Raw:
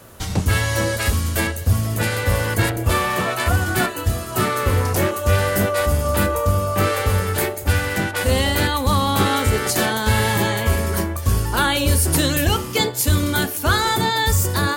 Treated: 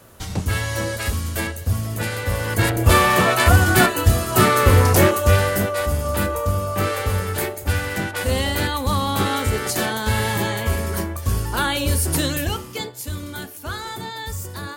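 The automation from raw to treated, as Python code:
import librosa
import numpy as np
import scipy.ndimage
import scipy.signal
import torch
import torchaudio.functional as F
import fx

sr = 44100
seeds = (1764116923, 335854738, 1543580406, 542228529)

y = fx.gain(x, sr, db=fx.line((2.38, -4.0), (2.91, 5.0), (5.08, 5.0), (5.68, -3.0), (12.25, -3.0), (13.0, -12.0)))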